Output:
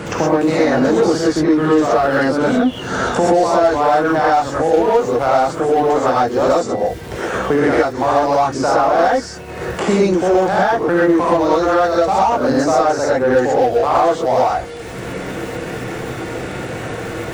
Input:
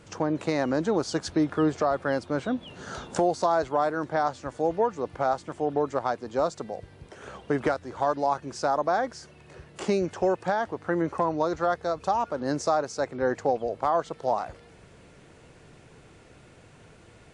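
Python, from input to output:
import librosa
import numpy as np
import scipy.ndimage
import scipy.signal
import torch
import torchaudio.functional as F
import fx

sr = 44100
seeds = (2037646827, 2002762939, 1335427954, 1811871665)

p1 = fx.dmg_crackle(x, sr, seeds[0], per_s=30.0, level_db=-40.0)
p2 = fx.rev_gated(p1, sr, seeds[1], gate_ms=150, shape='rising', drr_db=-7.5)
p3 = np.clip(p2, -10.0 ** (-22.5 / 20.0), 10.0 ** (-22.5 / 20.0))
p4 = p2 + F.gain(torch.from_numpy(p3), -4.0).numpy()
p5 = fx.band_squash(p4, sr, depth_pct=70)
y = F.gain(torch.from_numpy(p5), 1.5).numpy()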